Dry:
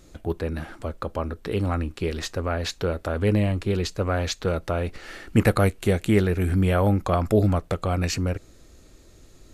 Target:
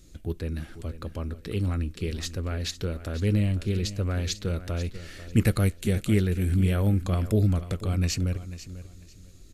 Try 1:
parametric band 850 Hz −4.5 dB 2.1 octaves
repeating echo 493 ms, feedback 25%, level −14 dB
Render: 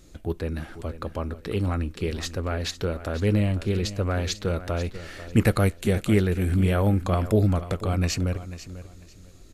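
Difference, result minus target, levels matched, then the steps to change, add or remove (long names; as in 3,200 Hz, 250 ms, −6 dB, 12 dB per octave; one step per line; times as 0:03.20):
1,000 Hz band +6.5 dB
change: parametric band 850 Hz −14.5 dB 2.1 octaves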